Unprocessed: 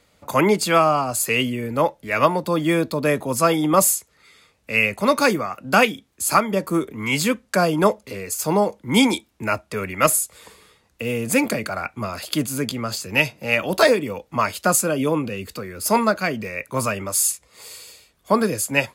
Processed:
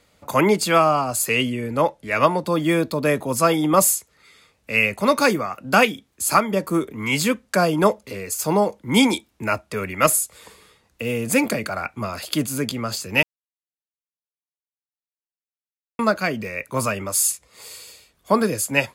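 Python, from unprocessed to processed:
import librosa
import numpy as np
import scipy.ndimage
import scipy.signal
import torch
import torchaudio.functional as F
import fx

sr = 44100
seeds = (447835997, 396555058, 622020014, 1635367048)

y = fx.lowpass(x, sr, hz=12000.0, slope=24, at=(1.32, 2.47))
y = fx.edit(y, sr, fx.silence(start_s=13.23, length_s=2.76), tone=tone)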